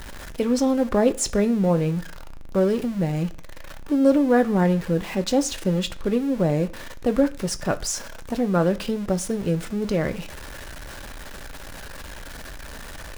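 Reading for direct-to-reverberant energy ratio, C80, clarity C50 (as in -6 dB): 9.0 dB, 22.5 dB, 19.0 dB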